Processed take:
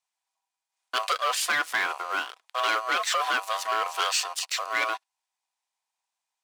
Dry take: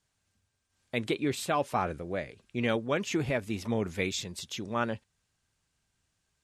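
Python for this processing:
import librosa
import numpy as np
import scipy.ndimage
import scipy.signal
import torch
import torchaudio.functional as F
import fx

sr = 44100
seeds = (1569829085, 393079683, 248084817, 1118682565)

y = x * np.sin(2.0 * np.pi * 880.0 * np.arange(len(x)) / sr)
y = fx.leveller(y, sr, passes=3)
y = scipy.signal.sosfilt(scipy.signal.bessel(2, 1100.0, 'highpass', norm='mag', fs=sr, output='sos'), y)
y = y * librosa.db_to_amplitude(2.0)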